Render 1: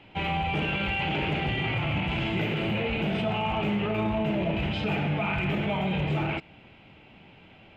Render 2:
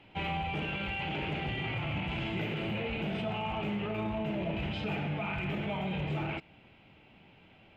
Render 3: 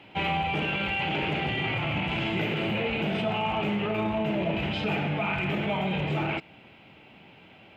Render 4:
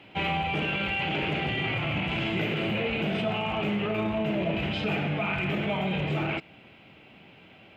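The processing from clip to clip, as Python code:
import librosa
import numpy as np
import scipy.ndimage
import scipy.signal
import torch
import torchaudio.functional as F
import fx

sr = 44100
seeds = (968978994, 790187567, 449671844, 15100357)

y1 = fx.rider(x, sr, range_db=10, speed_s=0.5)
y1 = F.gain(torch.from_numpy(y1), -6.5).numpy()
y2 = fx.highpass(y1, sr, hz=150.0, slope=6)
y2 = F.gain(torch.from_numpy(y2), 7.5).numpy()
y3 = fx.peak_eq(y2, sr, hz=880.0, db=-5.5, octaves=0.2)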